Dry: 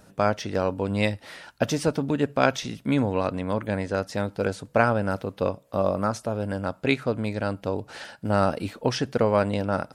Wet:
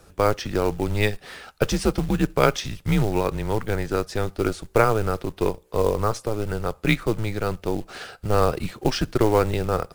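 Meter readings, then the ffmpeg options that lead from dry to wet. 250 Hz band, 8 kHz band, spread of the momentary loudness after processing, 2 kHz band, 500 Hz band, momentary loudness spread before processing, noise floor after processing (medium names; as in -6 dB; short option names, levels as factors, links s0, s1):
+0.5 dB, +4.0 dB, 8 LU, +0.5 dB, +2.0 dB, 7 LU, -54 dBFS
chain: -af "afreqshift=-110,acrusher=bits=5:mode=log:mix=0:aa=0.000001,volume=1.33"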